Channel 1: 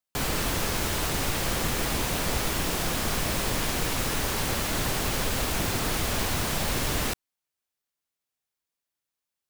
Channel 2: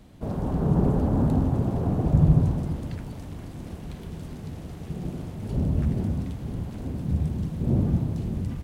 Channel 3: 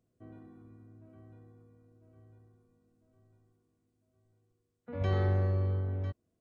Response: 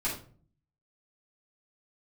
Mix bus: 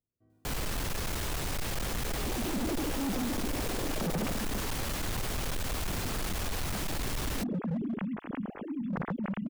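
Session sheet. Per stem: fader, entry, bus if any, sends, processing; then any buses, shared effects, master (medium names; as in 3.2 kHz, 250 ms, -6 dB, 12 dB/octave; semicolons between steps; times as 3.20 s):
-0.5 dB, 0.30 s, no send, none
-2.0 dB, 1.85 s, no send, formants replaced by sine waves
-17.5 dB, 0.00 s, no send, none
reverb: none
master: bass shelf 75 Hz +8 dB; hard clipper -23.5 dBFS, distortion -7 dB; peak limiter -29 dBFS, peak gain reduction 5.5 dB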